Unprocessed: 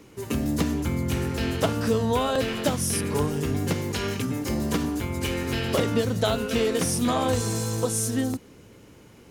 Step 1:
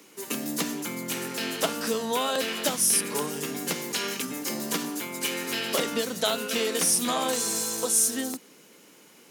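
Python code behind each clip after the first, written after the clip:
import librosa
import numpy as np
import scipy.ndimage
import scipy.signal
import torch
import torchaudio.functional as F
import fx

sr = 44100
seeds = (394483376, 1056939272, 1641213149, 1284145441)

y = scipy.signal.sosfilt(scipy.signal.butter(6, 160.0, 'highpass', fs=sr, output='sos'), x)
y = fx.tilt_eq(y, sr, slope=2.5)
y = F.gain(torch.from_numpy(y), -1.5).numpy()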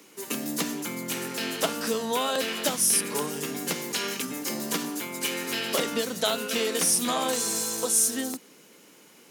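y = x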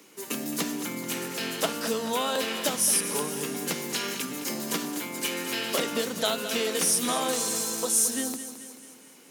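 y = fx.echo_feedback(x, sr, ms=217, feedback_pct=54, wet_db=-12.0)
y = F.gain(torch.from_numpy(y), -1.0).numpy()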